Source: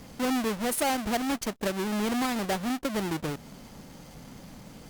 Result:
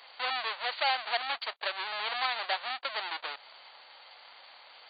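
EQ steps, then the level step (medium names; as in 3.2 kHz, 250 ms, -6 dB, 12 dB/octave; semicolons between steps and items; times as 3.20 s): high-pass 720 Hz 24 dB/octave; brick-wall FIR low-pass 4.7 kHz; treble shelf 3.1 kHz +9.5 dB; 0.0 dB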